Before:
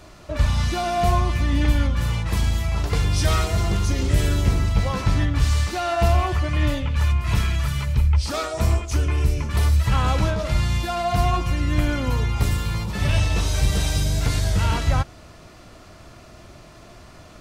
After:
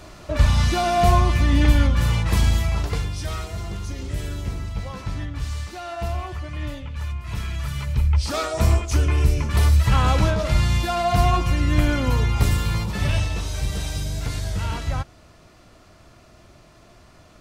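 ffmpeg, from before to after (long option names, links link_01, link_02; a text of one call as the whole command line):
ffmpeg -i in.wav -af "volume=14dB,afade=type=out:start_time=2.54:duration=0.61:silence=0.251189,afade=type=in:start_time=7.31:duration=1.27:silence=0.281838,afade=type=out:start_time=12.77:duration=0.62:silence=0.421697" out.wav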